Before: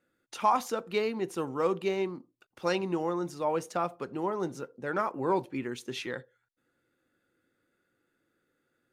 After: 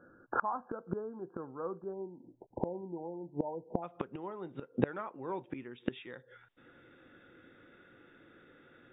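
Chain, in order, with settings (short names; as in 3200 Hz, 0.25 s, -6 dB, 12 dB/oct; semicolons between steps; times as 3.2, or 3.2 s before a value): brick-wall FIR low-pass 1700 Hz, from 1.92 s 1000 Hz, from 3.82 s 3800 Hz; flipped gate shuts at -32 dBFS, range -28 dB; gain +17 dB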